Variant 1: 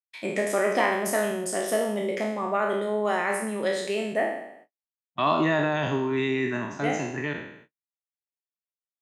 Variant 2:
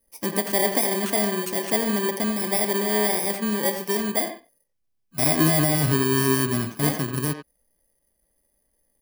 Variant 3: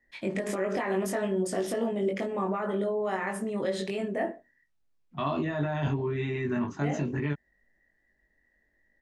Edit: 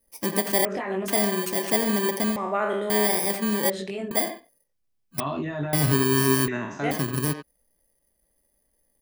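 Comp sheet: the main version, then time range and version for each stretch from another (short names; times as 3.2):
2
0.65–1.08 from 3
2.36–2.9 from 1
3.7–4.11 from 3
5.2–5.73 from 3
6.48–6.91 from 1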